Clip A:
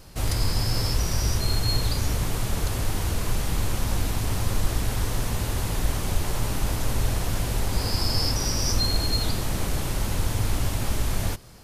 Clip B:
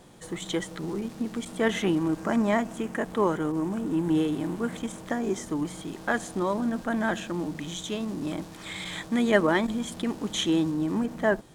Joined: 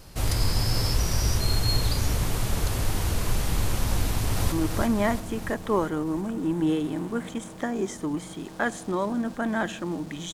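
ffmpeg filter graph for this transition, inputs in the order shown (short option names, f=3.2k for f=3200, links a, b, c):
-filter_complex "[0:a]apad=whole_dur=10.33,atrim=end=10.33,atrim=end=4.522[a];[1:a]atrim=start=1.998:end=7.81[b];[a][b]acrossfade=d=0.004:c1=hsin:c2=hsin,asplit=2[c][d];[d]afade=t=in:st=4.02:d=0.01,afade=t=out:st=4.52:d=0.01,aecho=0:1:340|680|1020|1360|1700|2040|2380|2720|3060:0.630957|0.378574|0.227145|0.136287|0.0817721|0.0490632|0.0294379|0.0176628|0.0105977[e];[c][e]amix=inputs=2:normalize=0"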